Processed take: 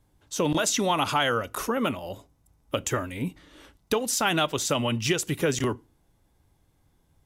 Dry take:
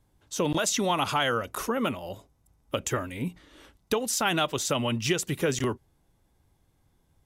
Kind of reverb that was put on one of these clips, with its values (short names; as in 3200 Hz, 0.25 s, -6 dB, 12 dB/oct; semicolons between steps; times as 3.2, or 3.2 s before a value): FDN reverb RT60 0.31 s, low-frequency decay 1.45×, high-frequency decay 0.95×, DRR 19.5 dB; gain +1.5 dB